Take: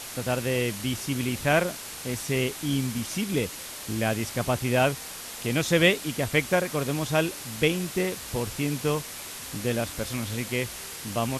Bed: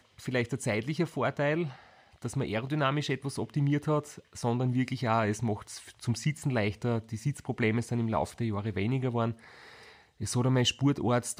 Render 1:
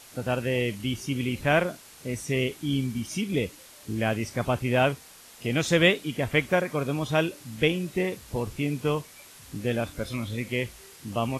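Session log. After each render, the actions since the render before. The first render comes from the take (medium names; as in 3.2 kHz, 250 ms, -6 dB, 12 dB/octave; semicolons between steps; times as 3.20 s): noise print and reduce 11 dB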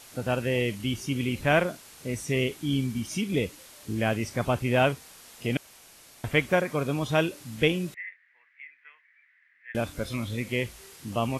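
5.57–6.24 s: room tone; 7.94–9.75 s: Butterworth band-pass 1.9 kHz, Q 4.3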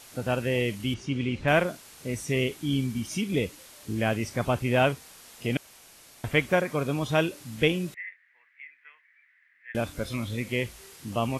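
0.94–1.48 s: distance through air 110 m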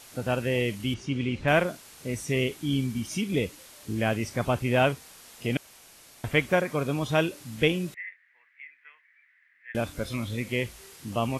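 no audible change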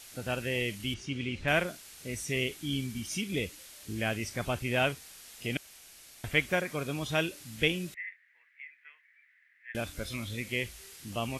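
ten-band graphic EQ 125 Hz -6 dB, 250 Hz -5 dB, 500 Hz -5 dB, 1 kHz -7 dB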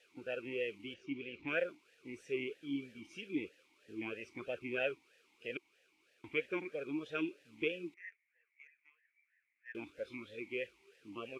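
in parallel at -7 dB: small samples zeroed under -43.5 dBFS; on the sum: talking filter e-u 3.1 Hz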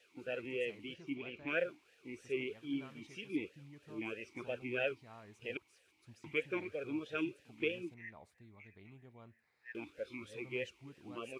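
add bed -28 dB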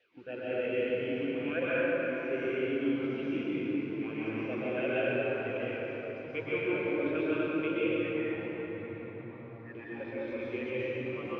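distance through air 280 m; plate-style reverb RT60 5 s, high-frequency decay 0.55×, pre-delay 110 ms, DRR -10 dB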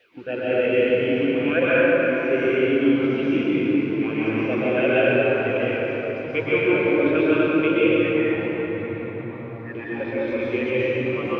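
trim +12 dB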